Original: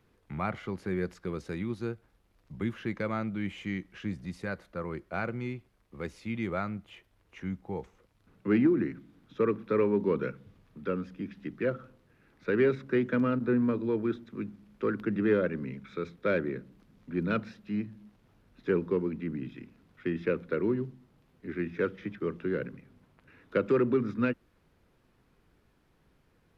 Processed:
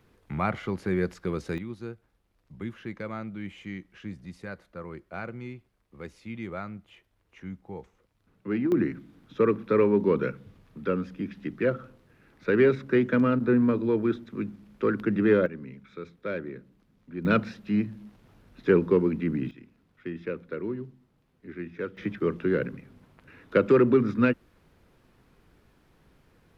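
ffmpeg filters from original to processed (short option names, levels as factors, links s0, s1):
-af "asetnsamples=n=441:p=0,asendcmd='1.58 volume volume -3.5dB;8.72 volume volume 4.5dB;15.46 volume volume -4.5dB;17.25 volume volume 7dB;19.51 volume volume -4dB;21.97 volume volume 6dB',volume=1.78"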